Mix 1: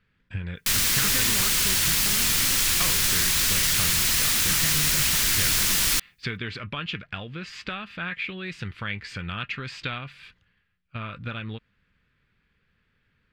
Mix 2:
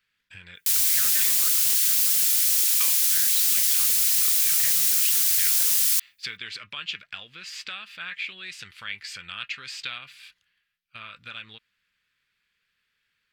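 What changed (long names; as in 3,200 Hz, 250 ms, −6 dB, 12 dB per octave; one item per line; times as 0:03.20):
speech +8.5 dB
master: add first-order pre-emphasis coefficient 0.97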